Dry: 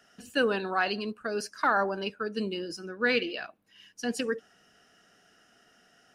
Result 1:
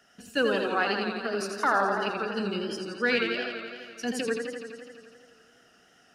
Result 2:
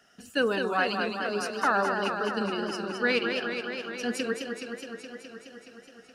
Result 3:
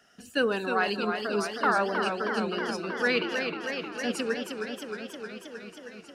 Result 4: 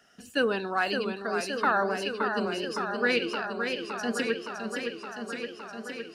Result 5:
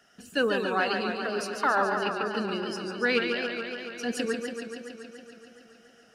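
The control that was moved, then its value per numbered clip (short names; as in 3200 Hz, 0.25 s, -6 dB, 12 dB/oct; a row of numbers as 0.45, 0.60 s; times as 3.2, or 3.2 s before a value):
warbling echo, time: 84, 210, 314, 566, 141 ms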